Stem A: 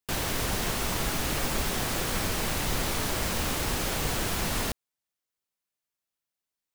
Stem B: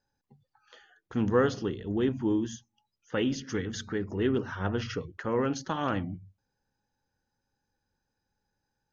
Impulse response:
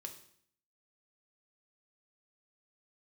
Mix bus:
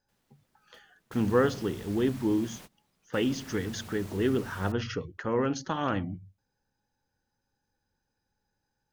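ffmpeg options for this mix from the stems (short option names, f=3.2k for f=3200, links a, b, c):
-filter_complex "[0:a]aeval=exprs='val(0)*sin(2*PI*180*n/s)':c=same,volume=-16.5dB[a];[1:a]volume=0.5dB,asplit=2[b][c];[c]apad=whole_len=297283[d];[a][d]sidechaingate=range=-27dB:threshold=-50dB:ratio=16:detection=peak[e];[e][b]amix=inputs=2:normalize=0"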